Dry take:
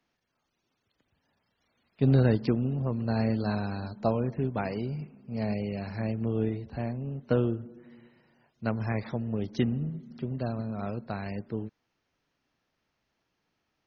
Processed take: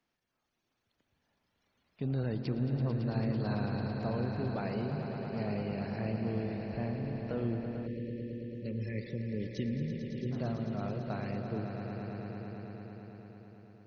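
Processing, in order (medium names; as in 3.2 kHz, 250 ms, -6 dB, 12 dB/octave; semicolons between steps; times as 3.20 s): peak limiter -22 dBFS, peak gain reduction 8.5 dB; echo with a slow build-up 111 ms, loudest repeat 5, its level -10 dB; time-frequency box 7.86–10.31 s, 590–1700 Hz -27 dB; trim -4.5 dB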